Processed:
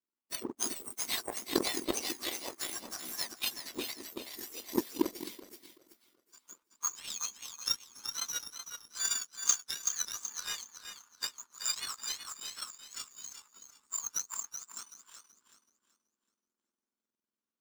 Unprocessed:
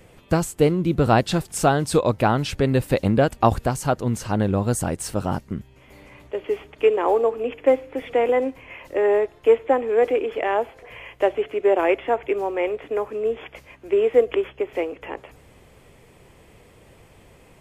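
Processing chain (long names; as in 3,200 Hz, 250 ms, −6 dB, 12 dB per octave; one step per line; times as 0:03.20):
frequency axis turned over on the octave scale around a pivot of 1,700 Hz
echo with a time of its own for lows and highs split 390 Hz, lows 213 ms, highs 378 ms, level −4 dB
power curve on the samples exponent 2
level −1.5 dB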